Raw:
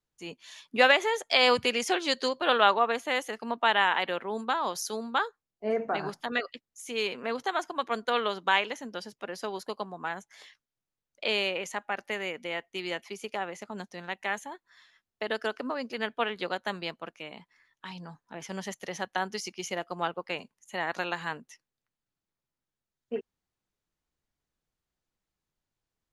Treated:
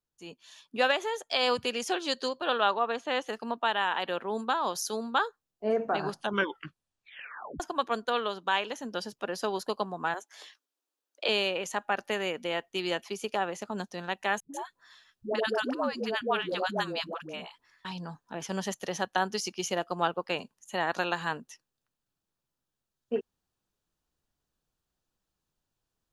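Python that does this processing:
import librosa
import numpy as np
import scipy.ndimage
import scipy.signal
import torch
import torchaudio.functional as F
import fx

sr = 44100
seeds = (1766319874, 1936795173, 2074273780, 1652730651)

y = fx.lowpass(x, sr, hz=fx.line((2.44, 9800.0), (3.27, 4200.0)), slope=12, at=(2.44, 3.27), fade=0.02)
y = fx.steep_highpass(y, sr, hz=260.0, slope=72, at=(10.14, 11.29))
y = fx.dispersion(y, sr, late='highs', ms=136.0, hz=430.0, at=(14.4, 17.85))
y = fx.edit(y, sr, fx.tape_stop(start_s=6.11, length_s=1.49), tone=tone)
y = fx.peak_eq(y, sr, hz=2100.0, db=-9.5, octaves=0.27)
y = fx.rider(y, sr, range_db=4, speed_s=0.5)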